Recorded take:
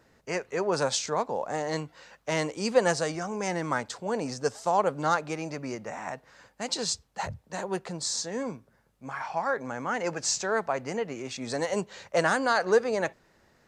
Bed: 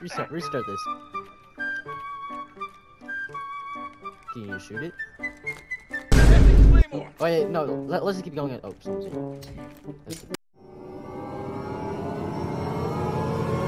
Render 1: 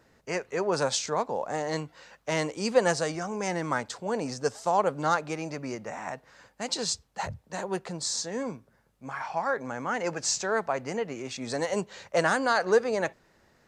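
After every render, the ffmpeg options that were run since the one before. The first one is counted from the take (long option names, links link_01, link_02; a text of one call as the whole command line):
ffmpeg -i in.wav -af anull out.wav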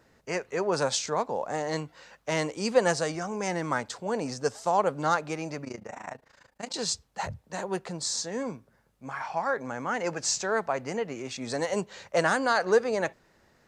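ffmpeg -i in.wav -filter_complex "[0:a]asettb=1/sr,asplit=3[link_01][link_02][link_03];[link_01]atrim=end=5.644[link_04];[link_02]atrim=start=5.64:end=6.74,asetpts=PTS-STARTPTS,afade=type=in:duration=0.004:curve=qsin,afade=type=out:start_time=1.096:duration=0.004:curve=qsin,tremolo=f=27:d=0.889[link_05];[link_03]atrim=start=6.736[link_06];[link_04][link_05]acrossfade=duration=0.004:curve1=hsin:curve2=qsin[link_07];[link_07][link_06]acrossfade=duration=0.004:curve1=qsin:curve2=hsin" out.wav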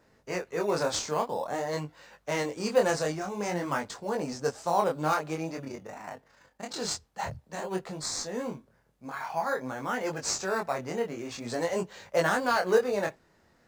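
ffmpeg -i in.wav -filter_complex "[0:a]asplit=2[link_01][link_02];[link_02]acrusher=samples=11:mix=1:aa=0.000001:lfo=1:lforange=6.6:lforate=0.4,volume=-11dB[link_03];[link_01][link_03]amix=inputs=2:normalize=0,flanger=delay=19.5:depth=6.7:speed=0.49" out.wav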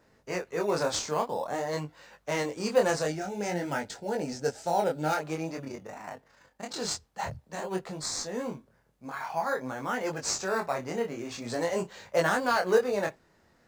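ffmpeg -i in.wav -filter_complex "[0:a]asettb=1/sr,asplit=3[link_01][link_02][link_03];[link_01]atrim=end=3.074[link_04];[link_02]atrim=start=3.07:end=5.21,asetpts=PTS-STARTPTS,afade=type=in:duration=0.004:curve=qsin,afade=type=out:start_time=2.136:duration=0.004:curve=qsin,asuperstop=centerf=1100:order=4:qfactor=3.2[link_05];[link_03]atrim=start=5.206[link_06];[link_04][link_05]acrossfade=duration=0.004:curve1=hsin:curve2=qsin[link_07];[link_07][link_06]acrossfade=duration=0.004:curve1=qsin:curve2=hsin,asettb=1/sr,asplit=3[link_08][link_09][link_10];[link_08]atrim=end=10.424[link_11];[link_09]atrim=start=10.42:end=12.2,asetpts=PTS-STARTPTS,afade=type=in:duration=0.004:curve=qsin,afade=type=out:start_time=1.776:duration=0.004:curve=qsin,asplit=2[link_12][link_13];[link_13]adelay=35,volume=-13dB[link_14];[link_12][link_14]amix=inputs=2:normalize=0,atrim=end_sample=78498[link_15];[link_10]atrim=start=12.196[link_16];[link_11][link_15]acrossfade=duration=0.004:curve1=hsin:curve2=qsin[link_17];[link_17][link_16]acrossfade=duration=0.004:curve1=qsin:curve2=hsin" out.wav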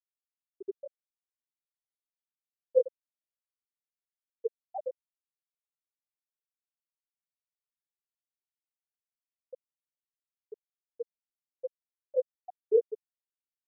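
ffmpeg -i in.wav -af "afftfilt=real='re*gte(hypot(re,im),0.562)':imag='im*gte(hypot(re,im),0.562)':win_size=1024:overlap=0.75" out.wav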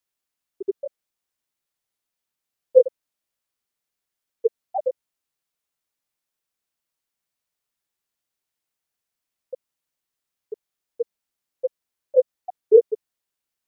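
ffmpeg -i in.wav -af "volume=11.5dB,alimiter=limit=-3dB:level=0:latency=1" out.wav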